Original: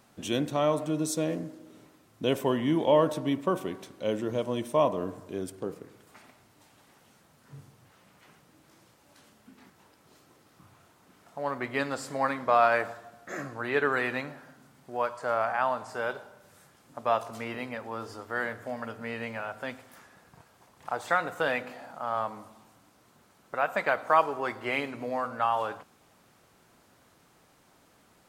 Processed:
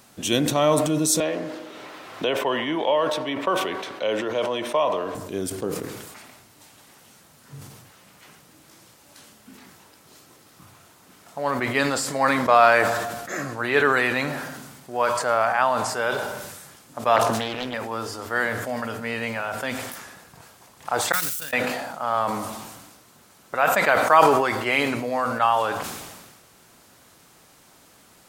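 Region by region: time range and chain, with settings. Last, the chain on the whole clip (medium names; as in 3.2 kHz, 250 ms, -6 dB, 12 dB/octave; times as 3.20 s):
1.20–5.15 s: three-band isolator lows -16 dB, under 440 Hz, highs -18 dB, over 4.2 kHz + three bands compressed up and down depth 70%
17.16–17.74 s: treble shelf 3 kHz -6 dB + loudspeaker Doppler distortion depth 0.55 ms
21.12–21.53 s: zero-crossing glitches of -26.5 dBFS + gate -26 dBFS, range -19 dB + amplifier tone stack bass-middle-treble 6-0-2
whole clip: treble shelf 3 kHz +8 dB; decay stretcher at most 39 dB/s; trim +5.5 dB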